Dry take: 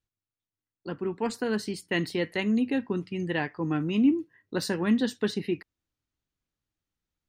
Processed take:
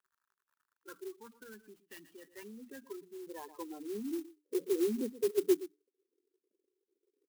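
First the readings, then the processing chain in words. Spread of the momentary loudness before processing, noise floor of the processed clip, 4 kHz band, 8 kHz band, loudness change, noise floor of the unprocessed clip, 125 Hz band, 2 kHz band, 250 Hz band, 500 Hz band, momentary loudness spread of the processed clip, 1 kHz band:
9 LU, under -85 dBFS, -16.5 dB, -5.5 dB, -8.0 dB, under -85 dBFS, under -25 dB, -20.5 dB, -12.5 dB, -4.0 dB, 21 LU, -15.0 dB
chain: echo 0.119 s -18.5 dB; limiter -21 dBFS, peak gain reduction 7.5 dB; crackle 76/s -44 dBFS; band-pass sweep 1500 Hz -> 380 Hz, 2.67–4.87; speaker cabinet 210–4600 Hz, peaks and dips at 220 Hz +4 dB, 390 Hz +8 dB, 720 Hz -9 dB, 1500 Hz -3 dB, 2100 Hz -10 dB, 4100 Hz -10 dB; spectral gain 1.17–2.38, 320–2300 Hz -7 dB; notches 60/120/180/240/300 Hz; spectral gate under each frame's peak -10 dB strong; clock jitter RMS 0.064 ms

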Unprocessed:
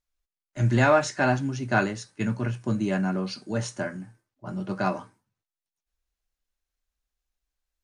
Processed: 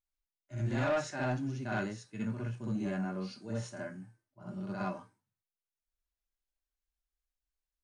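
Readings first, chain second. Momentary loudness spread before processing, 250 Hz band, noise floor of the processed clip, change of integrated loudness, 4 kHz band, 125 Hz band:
15 LU, -9.0 dB, under -85 dBFS, -10.5 dB, -11.0 dB, -9.5 dB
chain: on a send: reverse echo 62 ms -7 dB; on the sum: harmonic-percussive split percussive -9 dB; soft clip -17.5 dBFS, distortion -14 dB; gain -7.5 dB

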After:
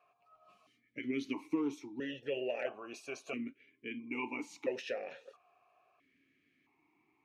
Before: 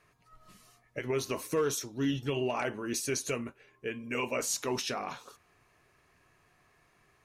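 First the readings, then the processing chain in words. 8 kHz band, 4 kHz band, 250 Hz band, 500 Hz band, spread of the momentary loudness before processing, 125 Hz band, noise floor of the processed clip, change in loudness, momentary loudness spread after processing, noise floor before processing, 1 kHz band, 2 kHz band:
-22.0 dB, -10.5 dB, -3.0 dB, -6.5 dB, 10 LU, -17.5 dB, -76 dBFS, -6.5 dB, 11 LU, -68 dBFS, -10.0 dB, -5.0 dB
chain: vowel sequencer 1.5 Hz; gain +7 dB

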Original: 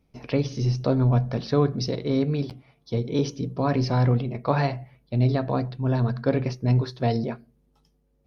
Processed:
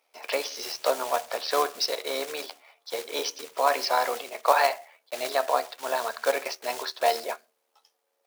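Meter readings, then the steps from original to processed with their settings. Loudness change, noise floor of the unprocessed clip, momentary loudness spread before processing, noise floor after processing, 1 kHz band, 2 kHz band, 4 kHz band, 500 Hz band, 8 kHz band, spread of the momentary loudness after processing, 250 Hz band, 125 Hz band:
-2.5 dB, -67 dBFS, 7 LU, -76 dBFS, +6.0 dB, +7.0 dB, +7.0 dB, -0.5 dB, n/a, 13 LU, -20.5 dB, under -40 dB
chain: block floating point 5-bit; HPF 610 Hz 24 dB/oct; AM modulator 77 Hz, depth 25%; gain +8.5 dB

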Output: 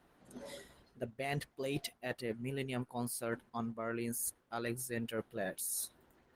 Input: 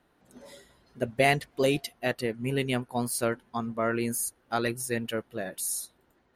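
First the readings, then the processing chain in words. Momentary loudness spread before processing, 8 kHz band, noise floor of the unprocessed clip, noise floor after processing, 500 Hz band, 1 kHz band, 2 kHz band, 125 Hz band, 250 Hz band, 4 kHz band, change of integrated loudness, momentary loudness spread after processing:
9 LU, -7.5 dB, -68 dBFS, -72 dBFS, -11.5 dB, -12.0 dB, -12.0 dB, -9.0 dB, -9.0 dB, -11.0 dB, -10.5 dB, 12 LU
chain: reverse; compressor 12:1, threshold -36 dBFS, peak gain reduction 19 dB; reverse; gain +1.5 dB; Opus 20 kbps 48000 Hz

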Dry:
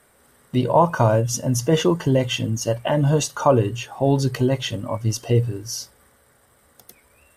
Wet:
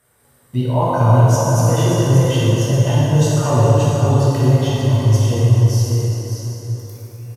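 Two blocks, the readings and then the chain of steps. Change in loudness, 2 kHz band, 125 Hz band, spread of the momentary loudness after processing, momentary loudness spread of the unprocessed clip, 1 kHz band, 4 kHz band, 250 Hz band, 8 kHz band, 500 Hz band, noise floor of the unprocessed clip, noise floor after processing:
+5.5 dB, +1.0 dB, +10.0 dB, 12 LU, 8 LU, +2.5 dB, +1.0 dB, +3.5 dB, +2.5 dB, +2.0 dB, -58 dBFS, -55 dBFS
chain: high shelf 6200 Hz +5.5 dB; echo 0.581 s -7 dB; flange 0.67 Hz, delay 5.5 ms, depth 4.7 ms, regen +72%; bell 100 Hz +12.5 dB 0.81 oct; plate-style reverb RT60 4.1 s, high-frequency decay 0.65×, DRR -8 dB; gain -4 dB

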